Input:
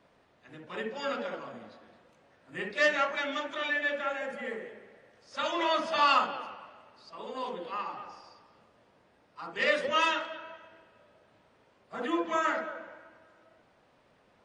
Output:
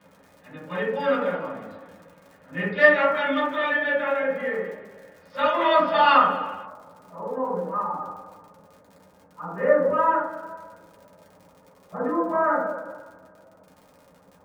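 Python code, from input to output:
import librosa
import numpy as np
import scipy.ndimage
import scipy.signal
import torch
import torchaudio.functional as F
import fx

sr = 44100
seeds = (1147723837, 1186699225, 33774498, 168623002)

y = fx.lowpass(x, sr, hz=fx.steps((0.0, 3800.0), (6.65, 1300.0)), slope=24)
y = fx.dmg_crackle(y, sr, seeds[0], per_s=61.0, level_db=-44.0)
y = fx.rev_fdn(y, sr, rt60_s=0.47, lf_ratio=1.05, hf_ratio=0.35, size_ms=33.0, drr_db=-7.5)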